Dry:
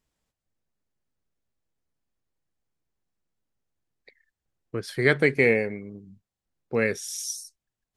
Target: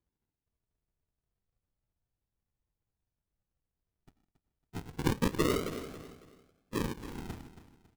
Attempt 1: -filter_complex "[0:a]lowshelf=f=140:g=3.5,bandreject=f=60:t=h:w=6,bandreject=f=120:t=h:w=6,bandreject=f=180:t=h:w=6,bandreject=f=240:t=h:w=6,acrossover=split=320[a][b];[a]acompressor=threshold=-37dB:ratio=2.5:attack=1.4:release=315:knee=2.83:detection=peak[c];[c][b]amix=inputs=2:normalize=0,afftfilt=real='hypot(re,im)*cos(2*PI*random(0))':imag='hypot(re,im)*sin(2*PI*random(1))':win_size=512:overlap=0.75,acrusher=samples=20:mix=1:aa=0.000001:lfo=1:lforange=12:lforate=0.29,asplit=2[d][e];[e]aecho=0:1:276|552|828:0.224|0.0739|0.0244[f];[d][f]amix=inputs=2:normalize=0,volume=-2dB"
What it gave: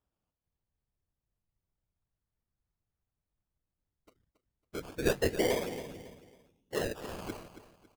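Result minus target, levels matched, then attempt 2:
decimation with a swept rate: distortion -19 dB
-filter_complex "[0:a]lowshelf=f=140:g=3.5,bandreject=f=60:t=h:w=6,bandreject=f=120:t=h:w=6,bandreject=f=180:t=h:w=6,bandreject=f=240:t=h:w=6,acrossover=split=320[a][b];[a]acompressor=threshold=-37dB:ratio=2.5:attack=1.4:release=315:knee=2.83:detection=peak[c];[c][b]amix=inputs=2:normalize=0,afftfilt=real='hypot(re,im)*cos(2*PI*random(0))':imag='hypot(re,im)*sin(2*PI*random(1))':win_size=512:overlap=0.75,acrusher=samples=65:mix=1:aa=0.000001:lfo=1:lforange=39:lforate=0.29,asplit=2[d][e];[e]aecho=0:1:276|552|828:0.224|0.0739|0.0244[f];[d][f]amix=inputs=2:normalize=0,volume=-2dB"

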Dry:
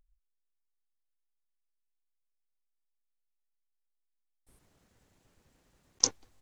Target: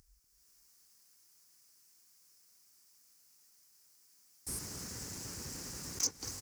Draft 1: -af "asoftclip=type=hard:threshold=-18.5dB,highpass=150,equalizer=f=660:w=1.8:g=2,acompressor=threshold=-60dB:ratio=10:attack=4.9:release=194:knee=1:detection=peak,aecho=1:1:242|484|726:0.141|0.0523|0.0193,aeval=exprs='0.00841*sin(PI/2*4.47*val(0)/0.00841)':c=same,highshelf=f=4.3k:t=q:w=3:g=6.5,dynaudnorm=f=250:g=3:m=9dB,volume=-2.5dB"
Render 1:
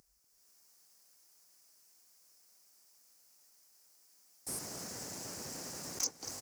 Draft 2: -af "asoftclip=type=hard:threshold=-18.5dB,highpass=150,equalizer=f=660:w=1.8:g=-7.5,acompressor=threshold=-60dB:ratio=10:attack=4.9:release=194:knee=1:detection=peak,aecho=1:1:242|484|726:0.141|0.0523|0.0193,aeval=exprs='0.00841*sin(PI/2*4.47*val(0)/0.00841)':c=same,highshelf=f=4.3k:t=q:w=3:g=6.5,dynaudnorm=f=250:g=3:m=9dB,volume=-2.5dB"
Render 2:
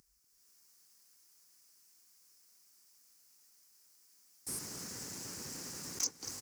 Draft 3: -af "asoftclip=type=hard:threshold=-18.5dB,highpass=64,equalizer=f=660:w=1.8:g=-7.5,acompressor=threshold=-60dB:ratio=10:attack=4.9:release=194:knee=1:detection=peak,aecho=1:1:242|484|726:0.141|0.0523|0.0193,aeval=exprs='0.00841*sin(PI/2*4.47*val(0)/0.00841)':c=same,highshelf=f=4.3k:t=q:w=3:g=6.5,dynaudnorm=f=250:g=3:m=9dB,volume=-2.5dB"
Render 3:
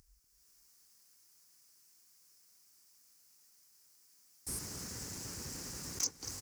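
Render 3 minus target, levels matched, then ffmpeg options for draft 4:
hard clip: distortion -4 dB
-af "asoftclip=type=hard:threshold=-26.5dB,highpass=64,equalizer=f=660:w=1.8:g=-7.5,acompressor=threshold=-60dB:ratio=10:attack=4.9:release=194:knee=1:detection=peak,aecho=1:1:242|484|726:0.141|0.0523|0.0193,aeval=exprs='0.00841*sin(PI/2*4.47*val(0)/0.00841)':c=same,highshelf=f=4.3k:t=q:w=3:g=6.5,dynaudnorm=f=250:g=3:m=9dB,volume=-2.5dB"

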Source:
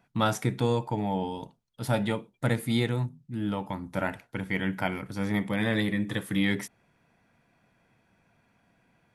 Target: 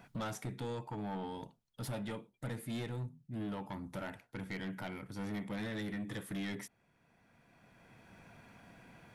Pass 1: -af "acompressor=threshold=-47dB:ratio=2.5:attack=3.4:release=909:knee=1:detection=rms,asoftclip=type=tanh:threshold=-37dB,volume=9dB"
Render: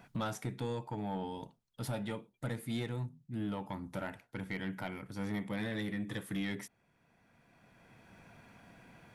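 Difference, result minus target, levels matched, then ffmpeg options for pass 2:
soft clip: distortion -7 dB
-af "acompressor=threshold=-47dB:ratio=2.5:attack=3.4:release=909:knee=1:detection=rms,asoftclip=type=tanh:threshold=-43.5dB,volume=9dB"

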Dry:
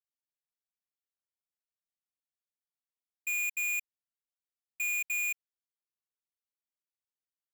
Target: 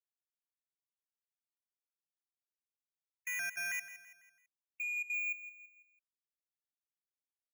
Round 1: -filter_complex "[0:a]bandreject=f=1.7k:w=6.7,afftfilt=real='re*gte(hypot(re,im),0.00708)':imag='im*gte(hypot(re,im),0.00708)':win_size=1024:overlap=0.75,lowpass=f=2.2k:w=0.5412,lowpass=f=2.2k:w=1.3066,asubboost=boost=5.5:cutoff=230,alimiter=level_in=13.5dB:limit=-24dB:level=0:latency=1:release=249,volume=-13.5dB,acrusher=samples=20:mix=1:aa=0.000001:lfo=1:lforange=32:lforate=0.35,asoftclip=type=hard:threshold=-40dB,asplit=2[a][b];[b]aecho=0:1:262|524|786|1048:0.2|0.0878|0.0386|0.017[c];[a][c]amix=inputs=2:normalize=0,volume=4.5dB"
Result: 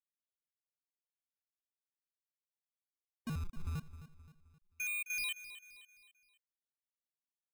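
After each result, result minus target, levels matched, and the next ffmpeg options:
echo 96 ms late; decimation with a swept rate: distortion +5 dB
-filter_complex "[0:a]bandreject=f=1.7k:w=6.7,afftfilt=real='re*gte(hypot(re,im),0.00708)':imag='im*gte(hypot(re,im),0.00708)':win_size=1024:overlap=0.75,lowpass=f=2.2k:w=0.5412,lowpass=f=2.2k:w=1.3066,asubboost=boost=5.5:cutoff=230,alimiter=level_in=13.5dB:limit=-24dB:level=0:latency=1:release=249,volume=-13.5dB,acrusher=samples=20:mix=1:aa=0.000001:lfo=1:lforange=32:lforate=0.35,asoftclip=type=hard:threshold=-40dB,asplit=2[a][b];[b]aecho=0:1:166|332|498|664:0.2|0.0878|0.0386|0.017[c];[a][c]amix=inputs=2:normalize=0,volume=4.5dB"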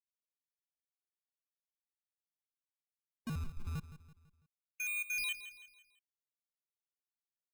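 decimation with a swept rate: distortion +5 dB
-filter_complex "[0:a]bandreject=f=1.7k:w=6.7,afftfilt=real='re*gte(hypot(re,im),0.00708)':imag='im*gte(hypot(re,im),0.00708)':win_size=1024:overlap=0.75,lowpass=f=2.2k:w=0.5412,lowpass=f=2.2k:w=1.3066,asubboost=boost=5.5:cutoff=230,alimiter=level_in=13.5dB:limit=-24dB:level=0:latency=1:release=249,volume=-13.5dB,acrusher=samples=6:mix=1:aa=0.000001:lfo=1:lforange=9.6:lforate=0.35,asoftclip=type=hard:threshold=-40dB,asplit=2[a][b];[b]aecho=0:1:166|332|498|664:0.2|0.0878|0.0386|0.017[c];[a][c]amix=inputs=2:normalize=0,volume=4.5dB"

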